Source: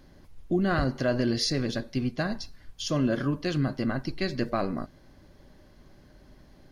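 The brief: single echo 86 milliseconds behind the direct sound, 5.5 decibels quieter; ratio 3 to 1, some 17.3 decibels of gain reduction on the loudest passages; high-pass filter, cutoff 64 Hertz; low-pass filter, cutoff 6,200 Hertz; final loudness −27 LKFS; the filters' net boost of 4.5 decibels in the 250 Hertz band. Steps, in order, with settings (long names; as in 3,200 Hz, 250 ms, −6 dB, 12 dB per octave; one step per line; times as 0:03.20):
high-pass filter 64 Hz
low-pass filter 6,200 Hz
parametric band 250 Hz +5.5 dB
downward compressor 3 to 1, threshold −43 dBFS
single-tap delay 86 ms −5.5 dB
level +13.5 dB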